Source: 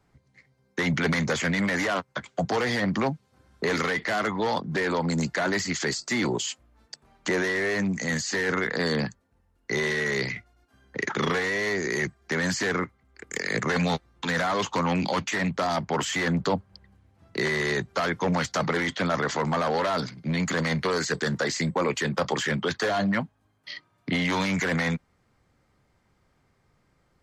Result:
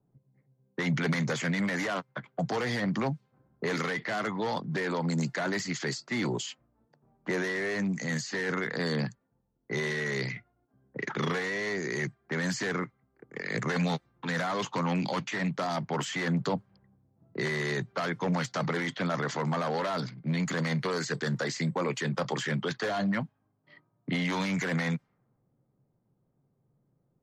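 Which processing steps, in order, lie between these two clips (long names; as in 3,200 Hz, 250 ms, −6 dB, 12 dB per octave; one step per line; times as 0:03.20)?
low shelf with overshoot 100 Hz −7.5 dB, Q 3
low-pass that shuts in the quiet parts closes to 570 Hz, open at −21.5 dBFS
level −5.5 dB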